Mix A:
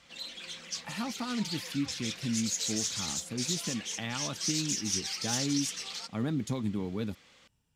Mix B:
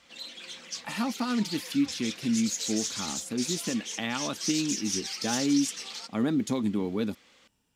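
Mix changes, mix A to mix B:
speech +5.0 dB
master: add low shelf with overshoot 180 Hz −7.5 dB, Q 1.5

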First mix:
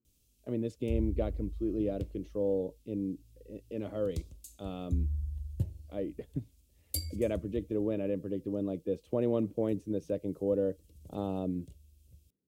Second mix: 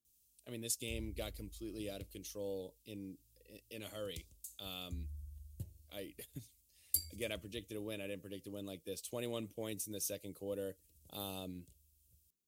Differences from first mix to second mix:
speech: remove resonant band-pass 260 Hz, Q 0.51
master: add first-order pre-emphasis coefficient 0.8

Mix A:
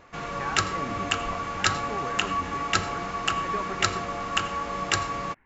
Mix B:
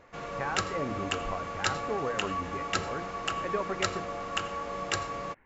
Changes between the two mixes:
background −6.5 dB
master: add parametric band 520 Hz +7 dB 0.65 octaves

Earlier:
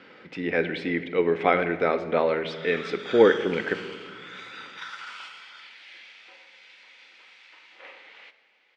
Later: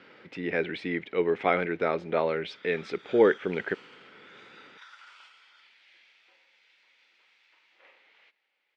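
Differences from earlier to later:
background −9.5 dB
reverb: off

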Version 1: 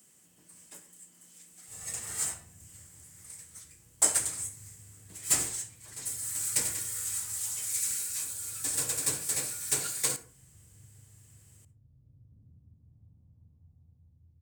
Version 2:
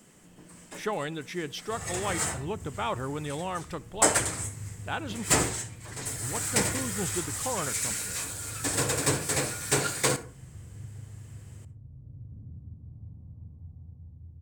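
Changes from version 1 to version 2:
speech: unmuted
master: remove first-order pre-emphasis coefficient 0.8

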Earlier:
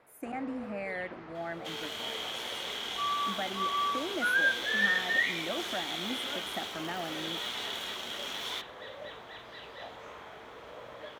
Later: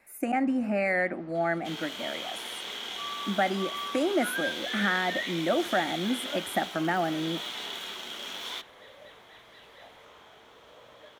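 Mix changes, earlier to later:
speech +10.5 dB
first sound −7.0 dB

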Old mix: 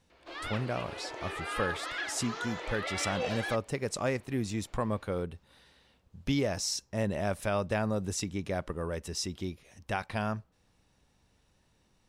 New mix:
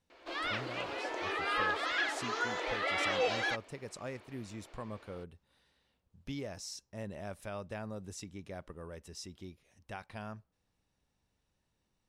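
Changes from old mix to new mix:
speech −11.5 dB
background +3.5 dB

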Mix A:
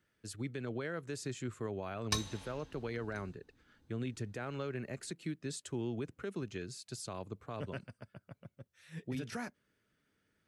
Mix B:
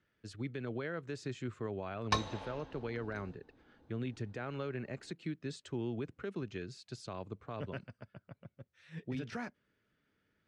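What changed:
background: add parametric band 640 Hz +13 dB 2.2 octaves
master: add low-pass filter 4,400 Hz 12 dB per octave

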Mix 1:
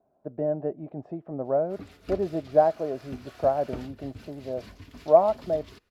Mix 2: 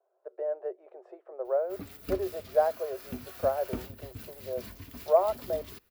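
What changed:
speech: add Chebyshev high-pass with heavy ripple 360 Hz, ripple 6 dB
master: remove low-pass filter 6,000 Hz 12 dB per octave

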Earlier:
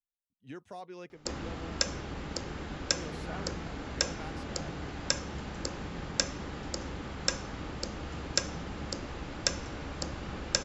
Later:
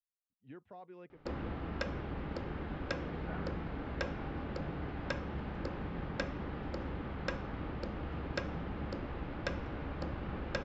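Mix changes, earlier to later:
speech −5.5 dB
master: add high-frequency loss of the air 420 metres

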